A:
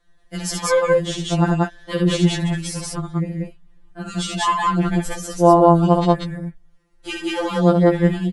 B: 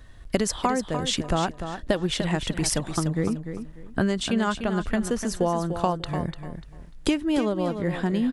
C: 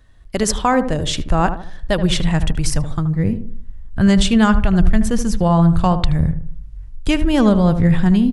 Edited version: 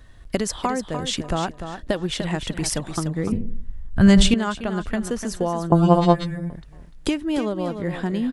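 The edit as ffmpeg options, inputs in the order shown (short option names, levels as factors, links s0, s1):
-filter_complex "[1:a]asplit=3[s0][s1][s2];[s0]atrim=end=3.322[s3];[2:a]atrim=start=3.318:end=4.342[s4];[s1]atrim=start=4.338:end=5.722[s5];[0:a]atrim=start=5.718:end=6.502[s6];[s2]atrim=start=6.498[s7];[s3][s4]acrossfade=d=0.004:c1=hsin:c2=hsin[s8];[s8][s5]acrossfade=d=0.004:c1=hsin:c2=hsin[s9];[s9][s6]acrossfade=d=0.004:c1=hsin:c2=hsin[s10];[s10][s7]acrossfade=d=0.004:c1=hsin:c2=hsin"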